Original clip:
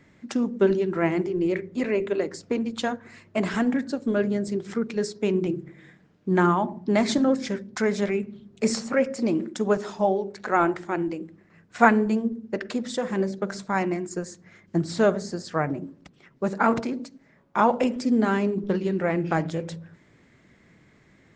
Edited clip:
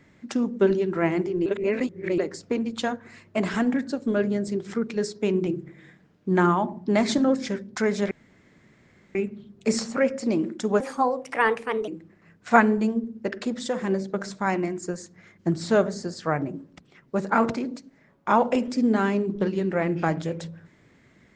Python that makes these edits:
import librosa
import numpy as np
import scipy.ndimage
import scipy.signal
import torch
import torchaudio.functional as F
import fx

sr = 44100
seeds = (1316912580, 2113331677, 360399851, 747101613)

y = fx.edit(x, sr, fx.reverse_span(start_s=1.46, length_s=0.72),
    fx.insert_room_tone(at_s=8.11, length_s=1.04),
    fx.speed_span(start_s=9.76, length_s=1.4, speed=1.3), tone=tone)